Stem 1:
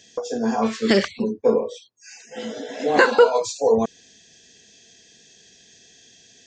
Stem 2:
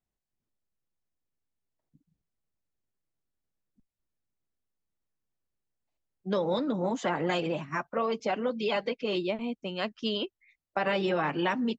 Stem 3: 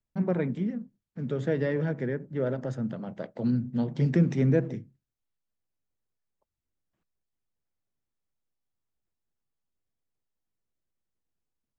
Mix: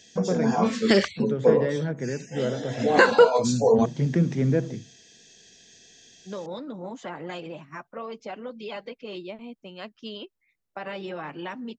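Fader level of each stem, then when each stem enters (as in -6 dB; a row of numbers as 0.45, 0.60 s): -1.5, -7.0, +0.5 dB; 0.00, 0.00, 0.00 s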